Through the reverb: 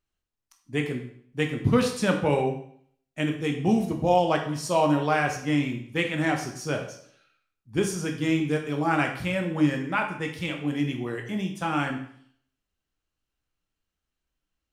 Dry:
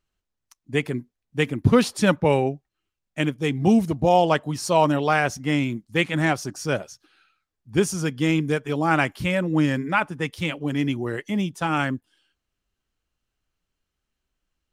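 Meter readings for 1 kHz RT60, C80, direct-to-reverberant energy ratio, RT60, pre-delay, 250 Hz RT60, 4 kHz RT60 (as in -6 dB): 0.60 s, 11.0 dB, 2.5 dB, 0.60 s, 16 ms, 0.65 s, 0.55 s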